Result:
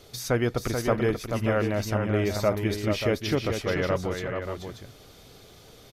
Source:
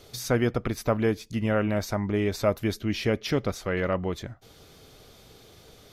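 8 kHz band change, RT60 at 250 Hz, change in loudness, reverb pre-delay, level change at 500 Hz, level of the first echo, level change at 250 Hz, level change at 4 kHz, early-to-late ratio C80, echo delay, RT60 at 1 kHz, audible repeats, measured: +1.5 dB, no reverb audible, +0.5 dB, no reverb audible, +1.0 dB, −6.0 dB, −1.0 dB, +1.5 dB, no reverb audible, 434 ms, no reverb audible, 2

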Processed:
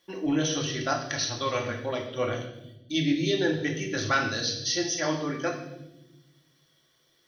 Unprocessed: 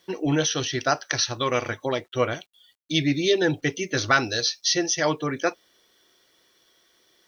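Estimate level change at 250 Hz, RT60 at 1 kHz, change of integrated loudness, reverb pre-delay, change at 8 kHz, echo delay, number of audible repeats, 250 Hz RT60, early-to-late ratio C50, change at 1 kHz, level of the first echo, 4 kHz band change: −1.5 dB, 0.70 s, −4.0 dB, 3 ms, −5.0 dB, no echo audible, no echo audible, 1.7 s, 7.0 dB, −4.5 dB, no echo audible, −4.5 dB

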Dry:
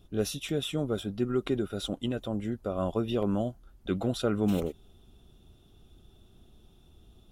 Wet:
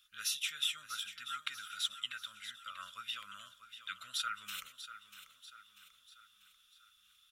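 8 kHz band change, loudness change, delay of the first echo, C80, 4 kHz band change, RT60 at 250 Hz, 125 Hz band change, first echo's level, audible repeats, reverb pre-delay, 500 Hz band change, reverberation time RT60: +2.0 dB, −8.5 dB, 641 ms, no reverb audible, +2.5 dB, no reverb audible, below −35 dB, −12.0 dB, 4, no reverb audible, below −40 dB, no reverb audible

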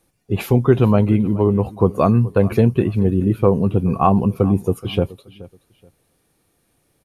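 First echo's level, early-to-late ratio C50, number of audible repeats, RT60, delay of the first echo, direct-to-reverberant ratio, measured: −19.5 dB, no reverb audible, 2, no reverb audible, 426 ms, no reverb audible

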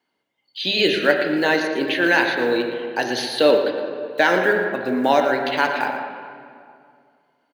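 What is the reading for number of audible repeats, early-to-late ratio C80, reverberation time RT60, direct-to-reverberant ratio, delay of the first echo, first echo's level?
1, 5.0 dB, 2.2 s, 2.5 dB, 115 ms, −11.0 dB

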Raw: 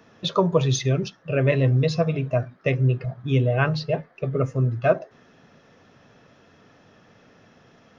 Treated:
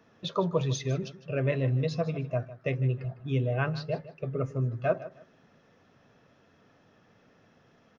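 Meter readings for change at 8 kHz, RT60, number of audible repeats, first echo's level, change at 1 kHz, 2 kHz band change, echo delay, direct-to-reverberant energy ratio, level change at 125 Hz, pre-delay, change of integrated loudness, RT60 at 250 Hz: can't be measured, no reverb audible, 2, −16.0 dB, −7.5 dB, −8.5 dB, 155 ms, no reverb audible, −7.5 dB, no reverb audible, −7.5 dB, no reverb audible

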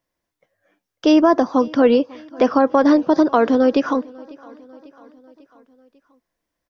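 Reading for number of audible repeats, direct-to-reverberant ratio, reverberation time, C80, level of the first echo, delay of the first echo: 3, no reverb audible, no reverb audible, no reverb audible, −24.0 dB, 546 ms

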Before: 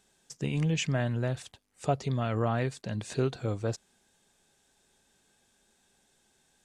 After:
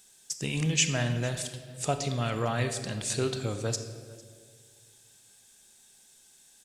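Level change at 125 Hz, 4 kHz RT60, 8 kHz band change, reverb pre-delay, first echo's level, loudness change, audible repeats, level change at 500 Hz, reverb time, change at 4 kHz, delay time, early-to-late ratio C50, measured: −0.5 dB, 1.2 s, +12.5 dB, 26 ms, −23.0 dB, +1.5 dB, 1, 0.0 dB, 1.8 s, +8.0 dB, 452 ms, 8.5 dB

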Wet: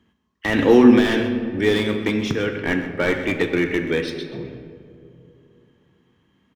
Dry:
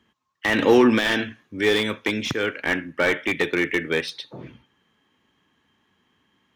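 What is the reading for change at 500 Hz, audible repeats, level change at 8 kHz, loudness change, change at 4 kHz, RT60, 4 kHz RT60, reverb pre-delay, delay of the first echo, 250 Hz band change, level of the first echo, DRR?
+2.5 dB, 1, −2.5 dB, +2.5 dB, −2.0 dB, 2.6 s, 1.2 s, 3 ms, 130 ms, +6.0 dB, −14.0 dB, 5.5 dB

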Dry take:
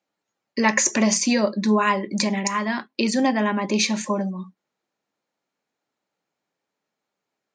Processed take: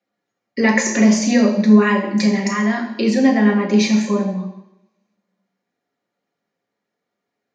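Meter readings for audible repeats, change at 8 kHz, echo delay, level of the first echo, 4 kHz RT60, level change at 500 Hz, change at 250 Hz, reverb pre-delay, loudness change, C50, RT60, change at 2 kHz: no echo audible, −2.5 dB, no echo audible, no echo audible, 0.90 s, +5.5 dB, +8.5 dB, 3 ms, +5.5 dB, 7.5 dB, 0.85 s, +3.5 dB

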